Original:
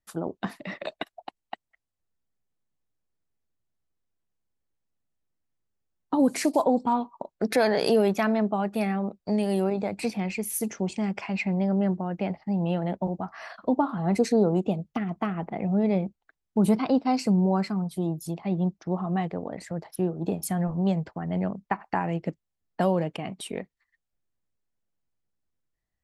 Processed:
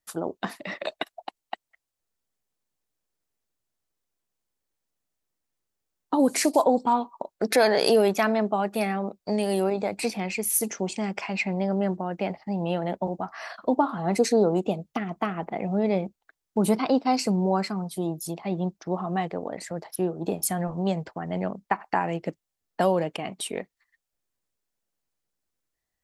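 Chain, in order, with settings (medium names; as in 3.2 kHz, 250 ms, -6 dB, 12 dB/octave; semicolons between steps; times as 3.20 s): tone controls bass -8 dB, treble +4 dB; trim +3 dB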